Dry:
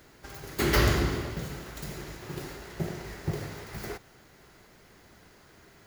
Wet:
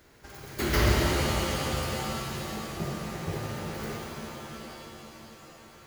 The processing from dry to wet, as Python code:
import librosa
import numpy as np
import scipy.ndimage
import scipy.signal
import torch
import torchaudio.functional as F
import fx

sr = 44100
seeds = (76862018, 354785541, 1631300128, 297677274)

y = fx.rev_shimmer(x, sr, seeds[0], rt60_s=3.4, semitones=7, shimmer_db=-2, drr_db=-0.5)
y = y * 10.0 ** (-3.5 / 20.0)